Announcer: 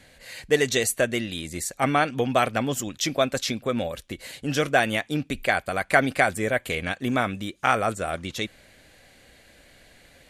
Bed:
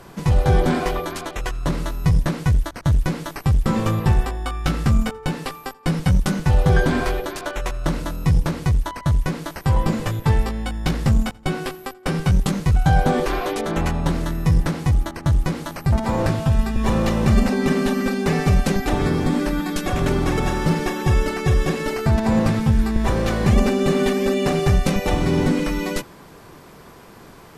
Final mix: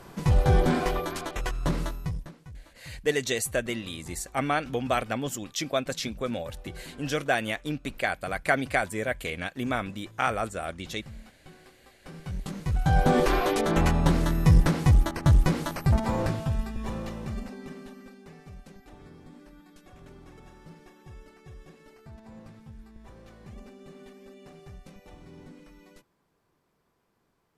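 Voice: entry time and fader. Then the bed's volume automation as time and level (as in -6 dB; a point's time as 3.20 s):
2.55 s, -5.0 dB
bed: 1.84 s -4.5 dB
2.41 s -27.5 dB
11.82 s -27.5 dB
13.20 s -1 dB
15.65 s -1 dB
18.36 s -29.5 dB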